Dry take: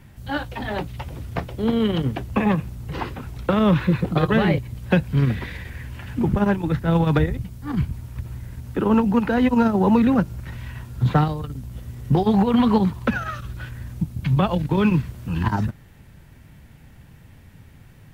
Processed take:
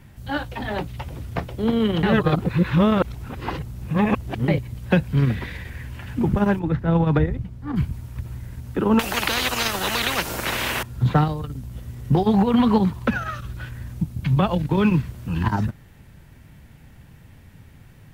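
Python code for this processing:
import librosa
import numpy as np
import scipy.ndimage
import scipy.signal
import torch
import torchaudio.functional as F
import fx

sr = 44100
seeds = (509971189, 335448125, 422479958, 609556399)

y = fx.lowpass(x, sr, hz=1800.0, slope=6, at=(6.59, 7.76))
y = fx.spectral_comp(y, sr, ratio=10.0, at=(8.99, 10.83))
y = fx.edit(y, sr, fx.reverse_span(start_s=2.03, length_s=2.45), tone=tone)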